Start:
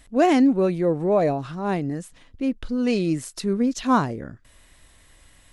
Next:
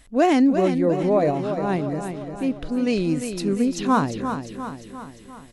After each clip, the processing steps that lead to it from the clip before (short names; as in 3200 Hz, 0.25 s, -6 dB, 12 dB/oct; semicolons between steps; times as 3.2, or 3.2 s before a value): feedback echo 0.35 s, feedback 55%, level -8 dB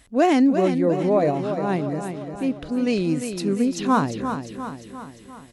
HPF 49 Hz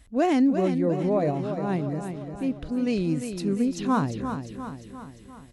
low shelf 140 Hz +12 dB; gain -6 dB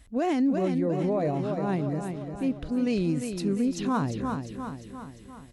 limiter -18 dBFS, peak gain reduction 6 dB